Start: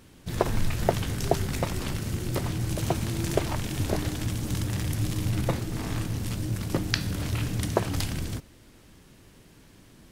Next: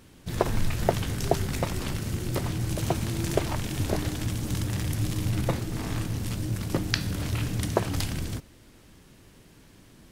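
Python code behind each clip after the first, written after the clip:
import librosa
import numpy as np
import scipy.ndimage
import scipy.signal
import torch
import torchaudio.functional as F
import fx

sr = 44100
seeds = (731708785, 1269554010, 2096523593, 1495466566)

y = x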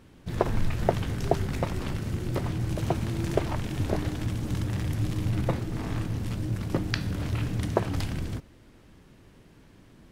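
y = fx.high_shelf(x, sr, hz=3900.0, db=-11.0)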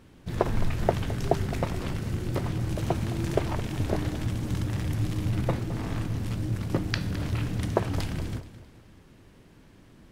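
y = fx.echo_feedback(x, sr, ms=214, feedback_pct=41, wet_db=-15.0)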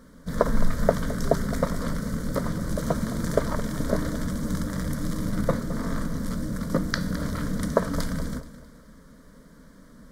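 y = fx.fixed_phaser(x, sr, hz=530.0, stages=8)
y = y * 10.0 ** (7.0 / 20.0)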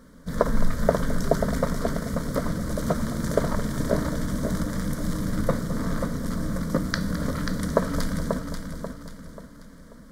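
y = fx.echo_feedback(x, sr, ms=537, feedback_pct=39, wet_db=-6.5)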